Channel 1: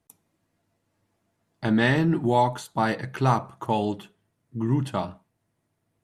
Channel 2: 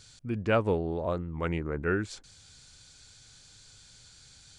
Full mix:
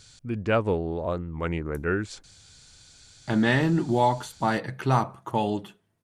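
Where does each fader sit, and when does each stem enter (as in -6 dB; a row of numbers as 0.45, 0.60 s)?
-1.0, +2.0 dB; 1.65, 0.00 s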